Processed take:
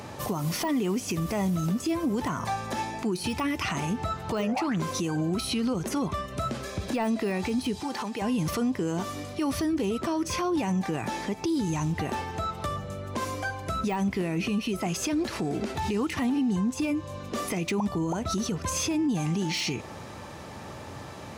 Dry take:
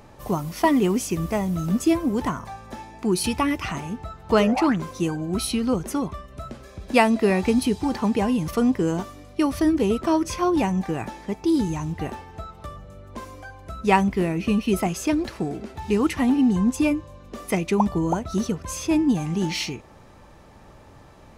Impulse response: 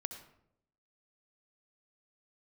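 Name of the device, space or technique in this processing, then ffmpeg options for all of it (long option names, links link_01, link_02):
broadcast voice chain: -filter_complex "[0:a]highpass=frequency=75:width=0.5412,highpass=frequency=75:width=1.3066,deesser=0.75,acompressor=threshold=-30dB:ratio=4,equalizer=frequency=5400:width_type=o:width=2.7:gain=4,alimiter=level_in=4.5dB:limit=-24dB:level=0:latency=1:release=59,volume=-4.5dB,asettb=1/sr,asplit=3[link_01][link_02][link_03];[link_01]atrim=end=7.804[link_04];[link_02]atrim=start=7.8:end=8.22,asetpts=PTS-STARTPTS,afade=type=in:duration=0.004:curve=qsin,afade=type=out:start_time=0.416:duration=0.004:curve=qsin,highpass=frequency=460:poles=1[link_05];[link_03]atrim=start=8.216[link_06];[link_04][link_05]acrossfade=duration=0.004:curve1=hsin:curve2=qsin[link_07];[link_07][link_06]acrossfade=duration=0.004:curve1=qsin:curve2=hsin,volume=8dB"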